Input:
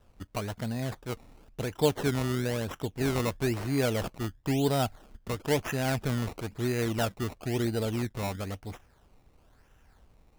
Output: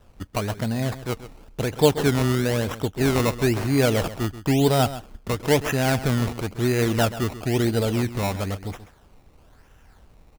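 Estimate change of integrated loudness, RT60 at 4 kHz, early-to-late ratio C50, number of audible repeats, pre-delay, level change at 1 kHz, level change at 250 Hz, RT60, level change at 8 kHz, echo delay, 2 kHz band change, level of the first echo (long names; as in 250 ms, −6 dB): +7.5 dB, no reverb audible, no reverb audible, 1, no reverb audible, +7.5 dB, +7.5 dB, no reverb audible, +7.5 dB, 133 ms, +7.5 dB, −14.0 dB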